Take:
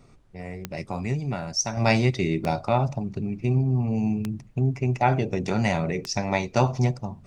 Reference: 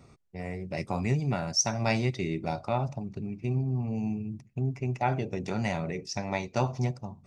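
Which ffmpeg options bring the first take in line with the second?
ffmpeg -i in.wav -af "adeclick=threshold=4,agate=range=-21dB:threshold=-37dB,asetnsamples=nb_out_samples=441:pad=0,asendcmd='1.77 volume volume -6.5dB',volume=0dB" out.wav

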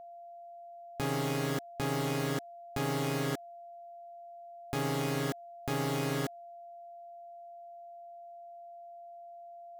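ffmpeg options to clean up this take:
ffmpeg -i in.wav -af "bandreject=frequency=690:width=30" out.wav

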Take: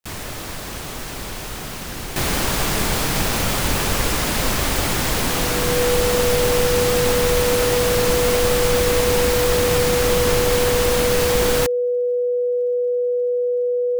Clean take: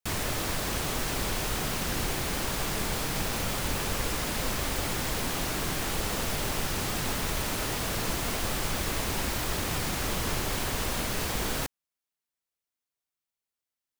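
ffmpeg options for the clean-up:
ffmpeg -i in.wav -af "adeclick=threshold=4,bandreject=frequency=490:width=30,asetnsamples=nb_out_samples=441:pad=0,asendcmd='2.16 volume volume -10dB',volume=0dB" out.wav

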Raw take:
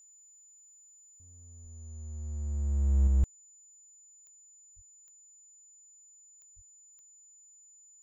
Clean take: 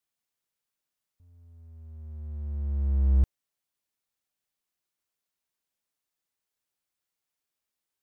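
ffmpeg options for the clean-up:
ffmpeg -i in.wav -filter_complex "[0:a]adeclick=threshold=4,bandreject=frequency=7000:width=30,asplit=3[link_01][link_02][link_03];[link_01]afade=type=out:start_time=1.62:duration=0.02[link_04];[link_02]highpass=frequency=140:width=0.5412,highpass=frequency=140:width=1.3066,afade=type=in:start_time=1.62:duration=0.02,afade=type=out:start_time=1.74:duration=0.02[link_05];[link_03]afade=type=in:start_time=1.74:duration=0.02[link_06];[link_04][link_05][link_06]amix=inputs=3:normalize=0,asplit=3[link_07][link_08][link_09];[link_07]afade=type=out:start_time=4.75:duration=0.02[link_10];[link_08]highpass=frequency=140:width=0.5412,highpass=frequency=140:width=1.3066,afade=type=in:start_time=4.75:duration=0.02,afade=type=out:start_time=4.87:duration=0.02[link_11];[link_09]afade=type=in:start_time=4.87:duration=0.02[link_12];[link_10][link_11][link_12]amix=inputs=3:normalize=0,asplit=3[link_13][link_14][link_15];[link_13]afade=type=out:start_time=6.55:duration=0.02[link_16];[link_14]highpass=frequency=140:width=0.5412,highpass=frequency=140:width=1.3066,afade=type=in:start_time=6.55:duration=0.02,afade=type=out:start_time=6.67:duration=0.02[link_17];[link_15]afade=type=in:start_time=6.67:duration=0.02[link_18];[link_16][link_17][link_18]amix=inputs=3:normalize=0,asetnsamples=nb_out_samples=441:pad=0,asendcmd='3.07 volume volume 3.5dB',volume=0dB" out.wav

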